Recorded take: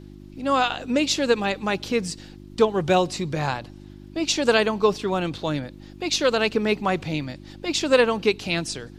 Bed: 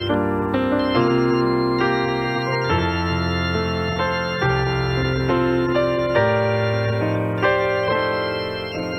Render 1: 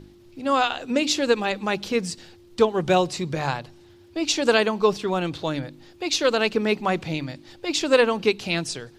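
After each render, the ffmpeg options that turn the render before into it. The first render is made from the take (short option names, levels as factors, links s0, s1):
-af "bandreject=f=50:t=h:w=4,bandreject=f=100:t=h:w=4,bandreject=f=150:t=h:w=4,bandreject=f=200:t=h:w=4,bandreject=f=250:t=h:w=4,bandreject=f=300:t=h:w=4"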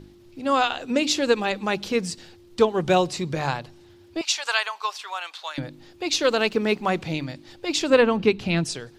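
-filter_complex "[0:a]asettb=1/sr,asplit=3[s0][s1][s2];[s0]atrim=end=4.214[s3];[s1]atrim=start=4.21:end=5.58,asetpts=PTS-STARTPTS,afade=t=in:d=0.004:c=qsin,afade=t=out:st=1.366:d=0.004:c=qsin,highpass=f=880:w=0.5412,highpass=f=880:w=1.3066[s4];[s2]atrim=start=5.576[s5];[s3][s4]acrossfade=d=0.004:c1=hsin:c2=qsin[s6];[s6][s5]acrossfade=d=0.004:c1=qsin:c2=hsin,asettb=1/sr,asplit=3[s7][s8][s9];[s7]atrim=end=6.234[s10];[s8]atrim=start=6.23:end=6.99,asetpts=PTS-STARTPTS,afade=t=in:d=0.004:c=qsin,afade=t=out:st=0.756:d=0.004:c=qsin,aeval=exprs='sgn(val(0))*max(abs(val(0))-0.00282,0)':c=same[s11];[s9]atrim=start=6.986[s12];[s10][s11]acrossfade=d=0.004:c1=hsin:c2=qsin[s13];[s13][s12]acrossfade=d=0.004:c1=qsin:c2=hsin,asettb=1/sr,asplit=3[s14][s15][s16];[s14]atrim=end=7.904[s17];[s15]atrim=start=7.9:end=8.65,asetpts=PTS-STARTPTS,afade=t=in:d=0.004:c=qsin,afade=t=out:st=0.746:d=0.004:c=qsin,bass=f=250:g=8,treble=f=4000:g=-9[s18];[s16]atrim=start=8.646[s19];[s17][s18]acrossfade=d=0.004:c1=hsin:c2=qsin[s20];[s20][s19]acrossfade=d=0.004:c1=qsin:c2=hsin"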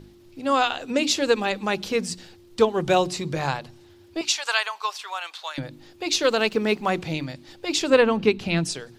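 -af "highshelf=f=9300:g=4,bandreject=f=60:t=h:w=6,bandreject=f=120:t=h:w=6,bandreject=f=180:t=h:w=6,bandreject=f=240:t=h:w=6,bandreject=f=300:t=h:w=6,bandreject=f=360:t=h:w=6"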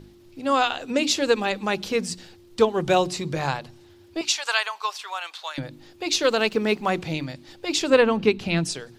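-af anull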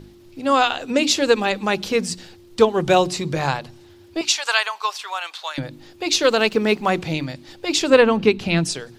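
-af "volume=1.58,alimiter=limit=0.794:level=0:latency=1"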